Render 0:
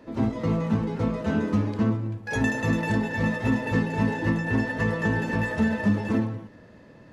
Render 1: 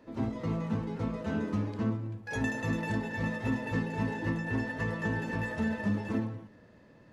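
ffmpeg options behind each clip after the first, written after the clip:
-af "bandreject=f=71.22:t=h:w=4,bandreject=f=142.44:t=h:w=4,bandreject=f=213.66:t=h:w=4,bandreject=f=284.88:t=h:w=4,bandreject=f=356.1:t=h:w=4,bandreject=f=427.32:t=h:w=4,bandreject=f=498.54:t=h:w=4,bandreject=f=569.76:t=h:w=4,bandreject=f=640.98:t=h:w=4,bandreject=f=712.2:t=h:w=4,volume=-7dB"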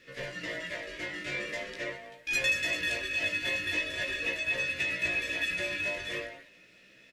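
-af "aeval=exprs='val(0)*sin(2*PI*800*n/s)':c=same,firequalizer=gain_entry='entry(420,0);entry(1000,-23);entry(1800,13)':delay=0.05:min_phase=1,flanger=delay=15:depth=4.9:speed=0.42,volume=4dB"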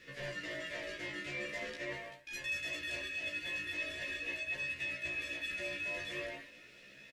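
-filter_complex "[0:a]areverse,acompressor=threshold=-40dB:ratio=6,areverse,asplit=2[a][b];[b]adelay=14,volume=-4dB[c];[a][c]amix=inputs=2:normalize=0"

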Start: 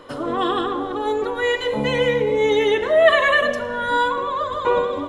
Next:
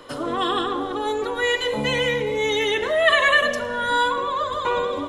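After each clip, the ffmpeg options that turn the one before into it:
-filter_complex "[0:a]highshelf=f=3k:g=8,acrossover=split=150|880[a][b][c];[b]alimiter=limit=-18dB:level=0:latency=1[d];[a][d][c]amix=inputs=3:normalize=0,volume=-1.5dB"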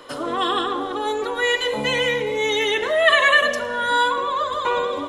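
-af "lowshelf=f=220:g=-8.5,volume=2dB"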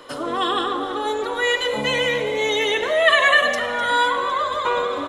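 -filter_complex "[0:a]asplit=8[a][b][c][d][e][f][g][h];[b]adelay=253,afreqshift=61,volume=-14dB[i];[c]adelay=506,afreqshift=122,volume=-17.9dB[j];[d]adelay=759,afreqshift=183,volume=-21.8dB[k];[e]adelay=1012,afreqshift=244,volume=-25.6dB[l];[f]adelay=1265,afreqshift=305,volume=-29.5dB[m];[g]adelay=1518,afreqshift=366,volume=-33.4dB[n];[h]adelay=1771,afreqshift=427,volume=-37.3dB[o];[a][i][j][k][l][m][n][o]amix=inputs=8:normalize=0"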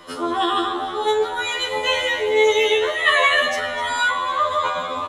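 -filter_complex "[0:a]asplit=2[a][b];[b]adelay=39,volume=-12dB[c];[a][c]amix=inputs=2:normalize=0,afftfilt=real='re*2*eq(mod(b,4),0)':imag='im*2*eq(mod(b,4),0)':win_size=2048:overlap=0.75,volume=3dB"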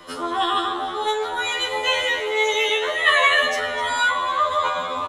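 -filter_complex "[0:a]acrossover=split=560|790[a][b][c];[a]asoftclip=type=tanh:threshold=-30.5dB[d];[b]aecho=1:1:1031:0.355[e];[d][e][c]amix=inputs=3:normalize=0"

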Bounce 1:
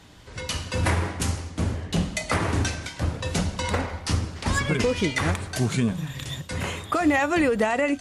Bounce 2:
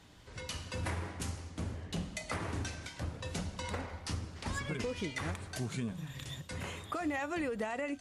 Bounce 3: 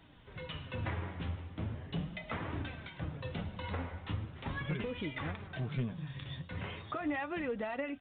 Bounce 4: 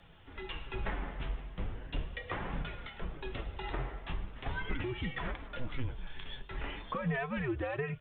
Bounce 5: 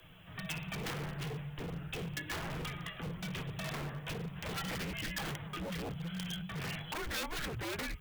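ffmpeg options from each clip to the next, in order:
-af "acompressor=threshold=-34dB:ratio=1.5,volume=-8.5dB"
-af "equalizer=f=140:w=2.9:g=6,flanger=delay=2.9:depth=8.8:regen=53:speed=0.39:shape=triangular,aresample=8000,aeval=exprs='clip(val(0),-1,0.0224)':c=same,aresample=44100,volume=3dB"
-af "afreqshift=-130,volume=2dB"
-af "afreqshift=-190,aeval=exprs='0.0178*(abs(mod(val(0)/0.0178+3,4)-2)-1)':c=same,aemphasis=mode=production:type=75fm,volume=1dB"

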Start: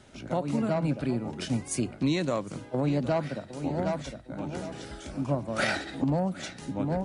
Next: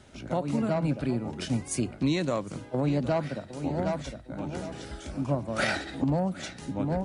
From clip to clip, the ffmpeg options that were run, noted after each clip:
-af "equalizer=f=64:w=1.5:g=5"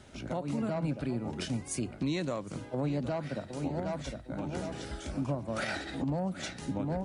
-af "alimiter=limit=-24dB:level=0:latency=1:release=256"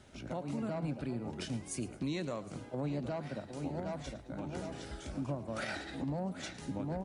-filter_complex "[0:a]asplit=5[a][b][c][d][e];[b]adelay=109,afreqshift=70,volume=-17dB[f];[c]adelay=218,afreqshift=140,volume=-24.5dB[g];[d]adelay=327,afreqshift=210,volume=-32.1dB[h];[e]adelay=436,afreqshift=280,volume=-39.6dB[i];[a][f][g][h][i]amix=inputs=5:normalize=0,volume=-4.5dB"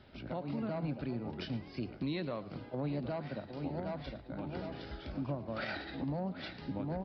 -af "aresample=11025,aresample=44100"

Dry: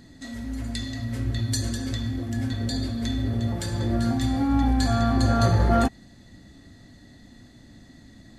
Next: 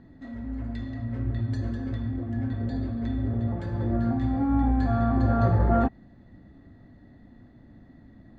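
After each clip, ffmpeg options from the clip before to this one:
-af "lowpass=1.4k,volume=-1.5dB"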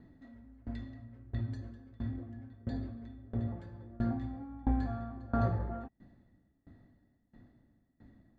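-af "aeval=exprs='val(0)*pow(10,-24*if(lt(mod(1.5*n/s,1),2*abs(1.5)/1000),1-mod(1.5*n/s,1)/(2*abs(1.5)/1000),(mod(1.5*n/s,1)-2*abs(1.5)/1000)/(1-2*abs(1.5)/1000))/20)':c=same,volume=-4dB"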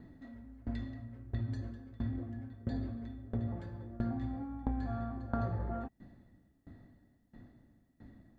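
-af "acompressor=threshold=-35dB:ratio=5,volume=3.5dB"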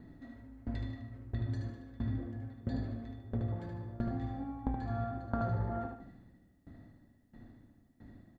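-af "aecho=1:1:75|150|225|300|375:0.596|0.238|0.0953|0.0381|0.0152"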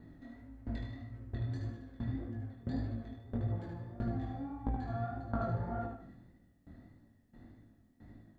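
-af "flanger=delay=17.5:depth=7.4:speed=1.7,volume=2dB"

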